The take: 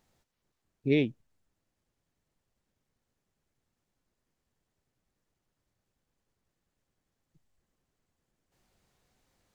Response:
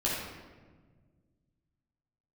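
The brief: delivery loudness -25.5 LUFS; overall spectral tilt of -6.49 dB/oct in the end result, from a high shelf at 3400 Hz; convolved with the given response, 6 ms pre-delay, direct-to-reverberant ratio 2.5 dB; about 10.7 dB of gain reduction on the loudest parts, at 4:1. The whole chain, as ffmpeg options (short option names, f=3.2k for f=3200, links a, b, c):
-filter_complex "[0:a]highshelf=f=3.4k:g=-3.5,acompressor=threshold=-33dB:ratio=4,asplit=2[a][b];[1:a]atrim=start_sample=2205,adelay=6[c];[b][c]afir=irnorm=-1:irlink=0,volume=-10.5dB[d];[a][d]amix=inputs=2:normalize=0,volume=13.5dB"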